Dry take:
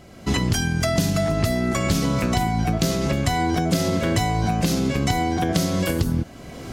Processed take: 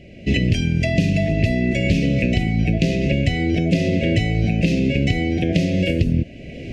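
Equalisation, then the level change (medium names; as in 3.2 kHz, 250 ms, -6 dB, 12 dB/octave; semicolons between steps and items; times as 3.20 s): elliptic band-stop 620–1900 Hz, stop band 80 dB; tape spacing loss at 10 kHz 23 dB; peaking EQ 2.6 kHz +14.5 dB 0.35 oct; +4.5 dB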